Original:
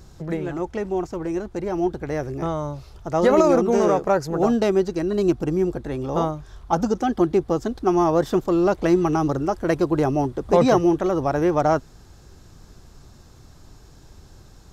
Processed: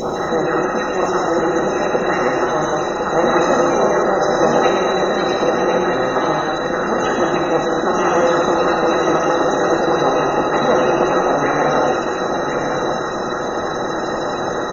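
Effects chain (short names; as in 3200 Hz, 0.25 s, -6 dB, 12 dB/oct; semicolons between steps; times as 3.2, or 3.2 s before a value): per-bin compression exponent 0.2; phaser stages 2, 3.2 Hz, lowest notch 300–3500 Hz; loudest bins only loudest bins 64; bell 120 Hz -7 dB 0.3 oct; reverb removal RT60 2 s; tilt shelf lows -8.5 dB, about 910 Hz; on a send: echo 1.056 s -5.5 dB; on the sum: non-linear reverb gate 0.29 s flat, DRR -3.5 dB; gain -2 dB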